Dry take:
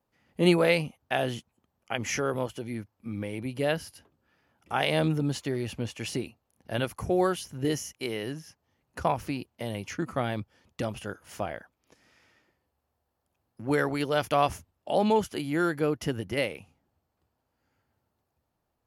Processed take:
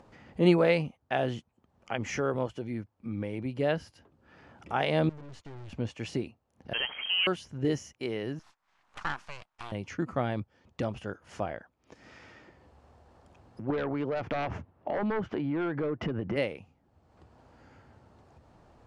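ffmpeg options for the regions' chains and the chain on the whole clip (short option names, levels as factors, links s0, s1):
-filter_complex "[0:a]asettb=1/sr,asplit=3[s0][s1][s2];[s0]atrim=end=5.094[s3];[s1]atrim=start=5.09:end=5.73,asetpts=PTS-STARTPTS,afade=t=in:d=0.004:c=qsin,afade=t=out:st=0.636:d=0.004:c=qsin,agate=range=0.0224:threshold=0.01:ratio=3:release=100:detection=peak,asubboost=boost=11:cutoff=170,aeval=exprs='(tanh(178*val(0)+0.65)-tanh(0.65))/178':c=same[s4];[s2]atrim=start=5.726[s5];[s3][s4]acrossfade=d=0.004:c1=hsin:c2=qsin[s6];[s6][s5]acrossfade=d=0.004:c1=qsin:c2=hsin,asettb=1/sr,asplit=3[s7][s8][s9];[s7]atrim=end=6.734[s10];[s8]atrim=start=6.73:end=7.27,asetpts=PTS-STARTPTS,afade=t=in:d=0.004:c=qsin,afade=t=out:st=0.536:d=0.004:c=qsin,aeval=exprs='val(0)+0.5*0.0266*sgn(val(0))':c=same,lowpass=f=2800:t=q:w=0.5098,lowpass=f=2800:t=q:w=0.6013,lowpass=f=2800:t=q:w=0.9,lowpass=f=2800:t=q:w=2.563,afreqshift=-3300[s11];[s9]atrim=start=7.266[s12];[s10][s11]acrossfade=d=0.004:c1=hsin:c2=qsin[s13];[s13][s12]acrossfade=d=0.004:c1=qsin:c2=hsin,asettb=1/sr,asplit=3[s14][s15][s16];[s14]atrim=end=8.394[s17];[s15]atrim=start=8.39:end=9.72,asetpts=PTS-STARTPTS,afade=t=in:d=0.004:c=qsin,afade=t=out:st=1.326:d=0.004:c=qsin,highpass=110,aeval=exprs='abs(val(0))':c=same,lowshelf=f=670:t=q:w=1.5:g=-11.5[s18];[s16]atrim=start=9.716[s19];[s17][s18]acrossfade=d=0.004:c1=hsin:c2=qsin[s20];[s20][s19]acrossfade=d=0.004:c1=qsin:c2=hsin,asettb=1/sr,asplit=3[s21][s22][s23];[s21]atrim=end=13.704[s24];[s22]atrim=start=13.7:end=16.36,asetpts=PTS-STARTPTS,afade=t=in:d=0.004:c=qsin,afade=t=out:st=2.656:d=0.004:c=qsin,highpass=100,lowpass=2000,aeval=exprs='0.282*sin(PI/2*2.82*val(0)/0.282)':c=same,acompressor=threshold=0.0398:ratio=8:attack=3.2:release=140:knee=1:detection=peak[s25];[s23]atrim=start=16.356[s26];[s24][s25]acrossfade=d=0.004:c1=hsin:c2=qsin[s27];[s27][s26]acrossfade=d=0.004:c1=qsin:c2=hsin,lowpass=f=8200:w=0.5412,lowpass=f=8200:w=1.3066,highshelf=f=2500:g=-9.5,acompressor=mode=upward:threshold=0.0112:ratio=2.5"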